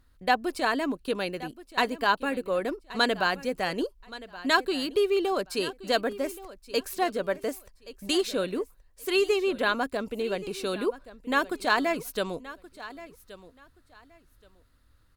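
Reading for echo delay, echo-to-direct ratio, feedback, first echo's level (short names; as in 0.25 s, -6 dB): 1.125 s, -17.0 dB, 21%, -17.0 dB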